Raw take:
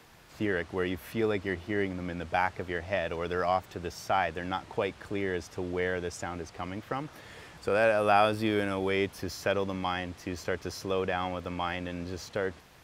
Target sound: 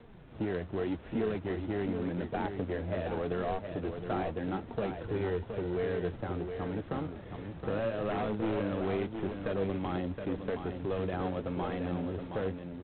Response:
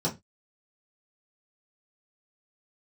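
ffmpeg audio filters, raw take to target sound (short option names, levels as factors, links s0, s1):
-filter_complex "[0:a]asplit=2[s0][s1];[s1]acrusher=samples=39:mix=1:aa=0.000001,volume=0.531[s2];[s0][s2]amix=inputs=2:normalize=0,tiltshelf=f=970:g=8,acontrast=31,flanger=delay=4.2:depth=7.1:regen=51:speed=0.85:shape=sinusoidal,asplit=3[s3][s4][s5];[s3]afade=t=out:st=4.9:d=0.02[s6];[s4]aecho=1:1:2.1:0.66,afade=t=in:st=4.9:d=0.02,afade=t=out:st=5.74:d=0.02[s7];[s5]afade=t=in:st=5.74:d=0.02[s8];[s6][s7][s8]amix=inputs=3:normalize=0,asettb=1/sr,asplit=3[s9][s10][s11];[s9]atrim=end=8.104[s12];[s10]atrim=start=8.1:end=8.62,asetpts=PTS-STARTPTS,afade=t=in:d=0.004:c=qsin,afade=t=out:st=0.516:d=0.004:c=qsin,aeval=exprs='0.188*(abs(mod(val(0)/0.188+3,4)-2)-1)':c=same[s13];[s11]atrim=start=8.616[s14];[s12][s13]acrossfade=d=0.004:c1=hsin:c2=qsin[s15];[s15][s14]acrossfade=d=0.004:c1=qsin:c2=hsin,acrossover=split=250|1100[s16][s17][s18];[s16]acompressor=threshold=0.0251:ratio=4[s19];[s17]acompressor=threshold=0.0501:ratio=4[s20];[s18]acompressor=threshold=0.0141:ratio=4[s21];[s19][s20][s21]amix=inputs=3:normalize=0,asoftclip=type=tanh:threshold=0.112,aecho=1:1:719:0.447,volume=0.562" -ar 8000 -c:a adpcm_g726 -b:a 24k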